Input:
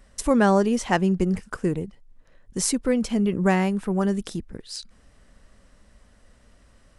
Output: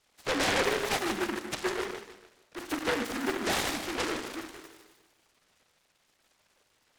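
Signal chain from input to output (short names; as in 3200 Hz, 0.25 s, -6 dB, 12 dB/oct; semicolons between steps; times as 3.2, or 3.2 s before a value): sine-wave speech; HPF 550 Hz 12 dB/oct; limiter -19.5 dBFS, peak gain reduction 9 dB; thinning echo 0.151 s, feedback 46%, high-pass 720 Hz, level -6 dB; reverb RT60 1.0 s, pre-delay 32 ms, DRR 4 dB; noise-modulated delay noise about 1200 Hz, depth 0.28 ms; gain -2.5 dB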